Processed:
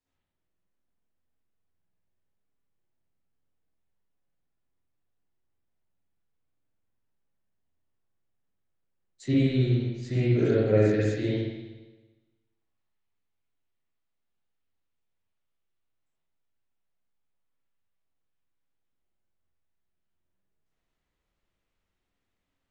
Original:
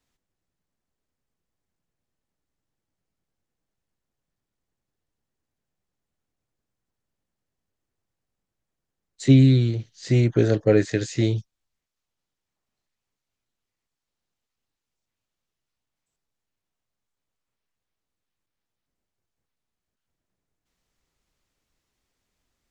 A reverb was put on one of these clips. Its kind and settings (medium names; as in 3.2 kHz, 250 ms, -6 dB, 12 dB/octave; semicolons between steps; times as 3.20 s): spring tank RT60 1.2 s, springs 47/58 ms, chirp 35 ms, DRR -9 dB; trim -12.5 dB